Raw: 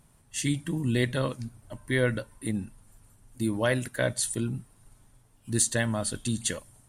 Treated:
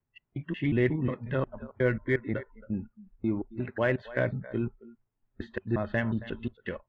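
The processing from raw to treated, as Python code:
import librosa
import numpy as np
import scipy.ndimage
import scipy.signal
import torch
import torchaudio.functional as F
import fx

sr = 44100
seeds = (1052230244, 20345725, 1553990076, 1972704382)

p1 = fx.block_reorder(x, sr, ms=180.0, group=2)
p2 = scipy.signal.sosfilt(scipy.signal.butter(6, 2700.0, 'lowpass', fs=sr, output='sos'), p1)
p3 = fx.peak_eq(p2, sr, hz=380.0, db=6.5, octaves=0.21)
p4 = p3 + 10.0 ** (-17.5 / 20.0) * np.pad(p3, (int(272 * sr / 1000.0), 0))[:len(p3)]
p5 = 10.0 ** (-28.0 / 20.0) * np.tanh(p4 / 10.0 ** (-28.0 / 20.0))
p6 = p4 + (p5 * 10.0 ** (-12.0 / 20.0))
p7 = fx.noise_reduce_blind(p6, sr, reduce_db=22)
y = p7 * 10.0 ** (-2.0 / 20.0)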